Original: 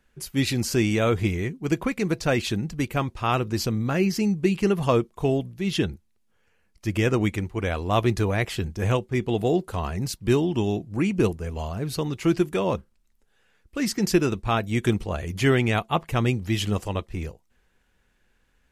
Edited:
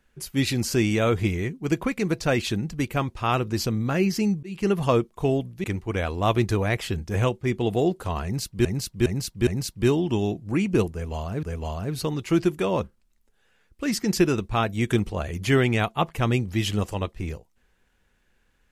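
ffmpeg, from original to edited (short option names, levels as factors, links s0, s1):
-filter_complex "[0:a]asplit=7[s0][s1][s2][s3][s4][s5][s6];[s0]atrim=end=4.43,asetpts=PTS-STARTPTS,afade=t=out:st=4.426:d=0.004:c=hsin[s7];[s1]atrim=start=4.43:end=5.642,asetpts=PTS-STARTPTS,afade=t=in:d=0.28[s8];[s2]atrim=start=7.318:end=10.332[s9];[s3]atrim=start=9.918:end=10.332[s10];[s4]atrim=start=9.918:end=10.332[s11];[s5]atrim=start=9.918:end=11.882[s12];[s6]atrim=start=11.368[s13];[s7][s8]concat=n=2:v=0:a=1[s14];[s14][s9]acrossfade=d=0.004:c1=hsin:c2=hsin[s15];[s15][s10]acrossfade=d=0.004:c1=hsin:c2=hsin[s16];[s16][s11]acrossfade=d=0.004:c1=hsin:c2=hsin[s17];[s17][s12]acrossfade=d=0.004:c1=hsin:c2=hsin[s18];[s18][s13]acrossfade=d=0.004:c1=hsin:c2=hsin"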